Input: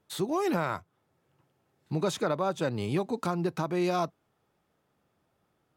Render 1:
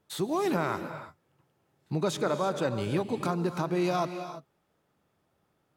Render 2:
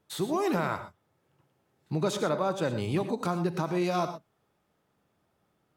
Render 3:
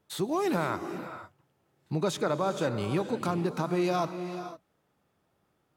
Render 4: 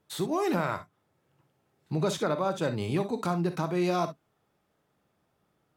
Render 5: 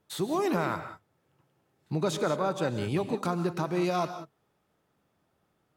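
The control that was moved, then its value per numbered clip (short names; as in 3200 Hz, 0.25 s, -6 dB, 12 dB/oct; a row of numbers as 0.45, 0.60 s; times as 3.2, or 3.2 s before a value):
non-linear reverb, gate: 360, 140, 530, 80, 210 ms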